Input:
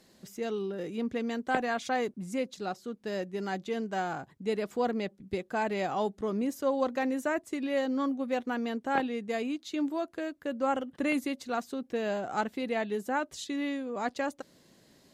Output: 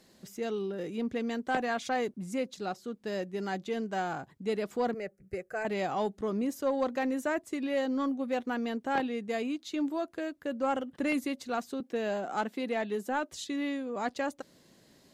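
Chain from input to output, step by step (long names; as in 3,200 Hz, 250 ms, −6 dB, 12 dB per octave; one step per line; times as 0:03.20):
0:11.80–0:13.32: high-pass filter 170 Hz 24 dB per octave
soft clipping −19 dBFS, distortion −24 dB
0:04.94–0:05.65: phaser with its sweep stopped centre 950 Hz, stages 6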